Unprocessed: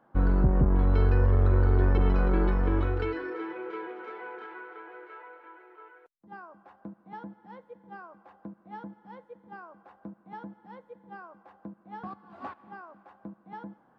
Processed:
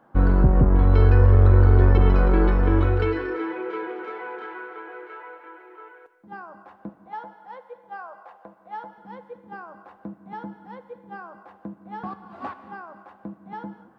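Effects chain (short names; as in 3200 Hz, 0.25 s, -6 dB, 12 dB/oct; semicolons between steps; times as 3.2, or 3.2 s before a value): 6.89–8.98 resonant low shelf 400 Hz -13 dB, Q 1.5; non-linear reverb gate 0.26 s flat, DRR 11.5 dB; gain +6 dB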